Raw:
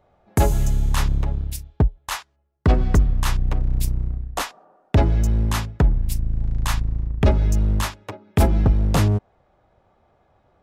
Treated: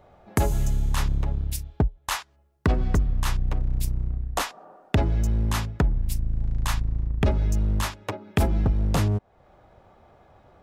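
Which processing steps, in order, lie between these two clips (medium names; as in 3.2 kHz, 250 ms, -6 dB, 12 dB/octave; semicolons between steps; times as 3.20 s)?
compression 2:1, threshold -35 dBFS, peak gain reduction 13 dB; trim +6.5 dB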